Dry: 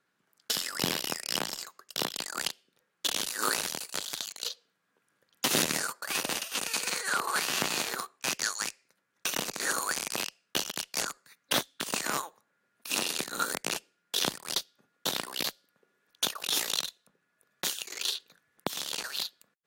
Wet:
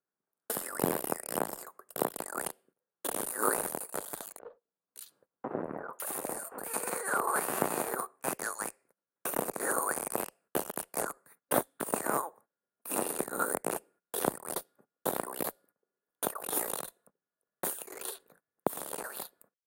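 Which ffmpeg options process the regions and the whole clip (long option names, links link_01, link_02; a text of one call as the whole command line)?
ffmpeg -i in.wav -filter_complex "[0:a]asettb=1/sr,asplit=3[link_01][link_02][link_03];[link_01]atrim=end=4.394[link_04];[link_02]atrim=start=4.39:end=6.7,asetpts=PTS-STARTPTS,afade=type=in:duration=0.004:curve=qsin,afade=type=out:start_time=2.306:duration=0.004:curve=qsin,acompressor=threshold=-34dB:ratio=2:attack=3.2:release=140:knee=1:detection=peak,acrossover=split=1700[link_05][link_06];[link_06]adelay=560[link_07];[link_05][link_07]amix=inputs=2:normalize=0,atrim=end_sample=101871[link_08];[link_03]atrim=start=6.696[link_09];[link_04][link_08]acrossfade=duration=0.004:curve1=hsin:curve2=qsin[link_10];[link_10][link_09]acrossfade=duration=0.004:curve1=qsin:curve2=hsin,agate=range=-18dB:threshold=-59dB:ratio=16:detection=peak,firequalizer=gain_entry='entry(160,0);entry(430,6);entry(720,5);entry(3000,-18);entry(5900,-19);entry(9000,2)':delay=0.05:min_phase=1" out.wav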